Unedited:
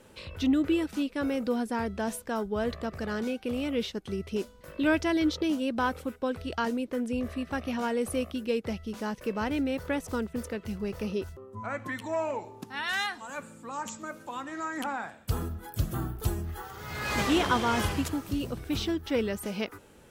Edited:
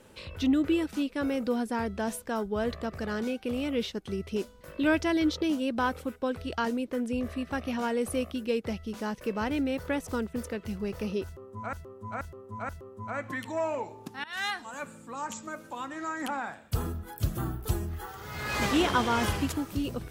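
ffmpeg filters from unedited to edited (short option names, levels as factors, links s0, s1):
-filter_complex "[0:a]asplit=5[s0][s1][s2][s3][s4];[s0]atrim=end=11.732[s5];[s1]atrim=start=11.248:end=11.732[s6];[s2]atrim=start=11.248:end=11.732[s7];[s3]atrim=start=11.248:end=12.8,asetpts=PTS-STARTPTS,afade=t=out:st=1.548:d=0.004:c=hsin:silence=0.1[s8];[s4]atrim=start=12.8,asetpts=PTS-STARTPTS,afade=t=in:d=0.25:silence=0.1[s9];[s5][s6]acrossfade=d=0.004:c1=hsin:c2=hsin[s10];[s10][s7]acrossfade=d=0.004:c1=hsin:c2=hsin[s11];[s8][s9]concat=n=2:v=0:a=1[s12];[s11][s12]acrossfade=d=0.004:c1=hsin:c2=hsin"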